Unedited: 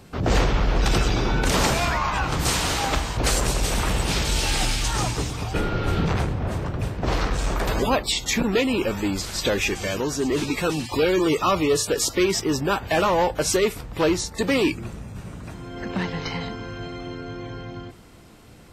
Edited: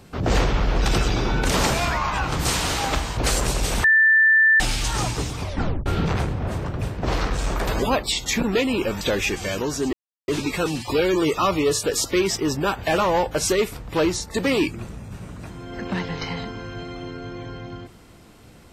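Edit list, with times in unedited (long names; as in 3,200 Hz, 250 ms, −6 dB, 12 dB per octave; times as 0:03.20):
0:03.84–0:04.60: beep over 1,770 Hz −12 dBFS
0:05.41: tape stop 0.45 s
0:09.01–0:09.40: remove
0:10.32: splice in silence 0.35 s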